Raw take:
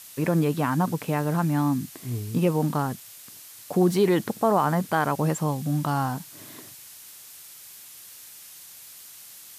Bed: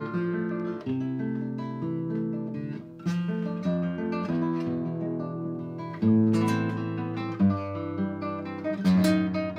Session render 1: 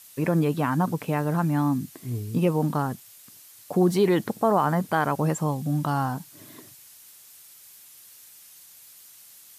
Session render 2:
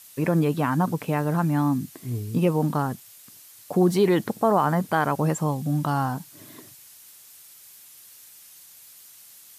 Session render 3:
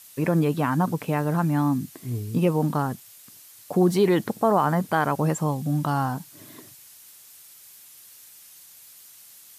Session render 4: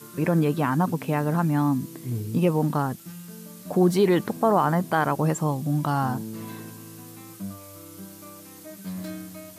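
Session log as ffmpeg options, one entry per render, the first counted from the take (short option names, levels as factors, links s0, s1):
-af "afftdn=nr=6:nf=-46"
-af "volume=1.12"
-af anull
-filter_complex "[1:a]volume=0.224[s0];[0:a][s0]amix=inputs=2:normalize=0"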